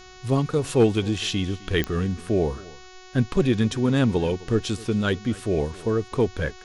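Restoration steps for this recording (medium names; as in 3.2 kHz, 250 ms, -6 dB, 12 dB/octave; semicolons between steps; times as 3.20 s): clip repair -9.5 dBFS; de-click; de-hum 370.1 Hz, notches 19; inverse comb 260 ms -21 dB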